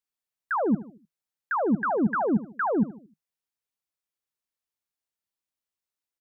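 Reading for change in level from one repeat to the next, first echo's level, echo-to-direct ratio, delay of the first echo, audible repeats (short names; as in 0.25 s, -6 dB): -7.5 dB, -16.5 dB, -15.5 dB, 76 ms, 3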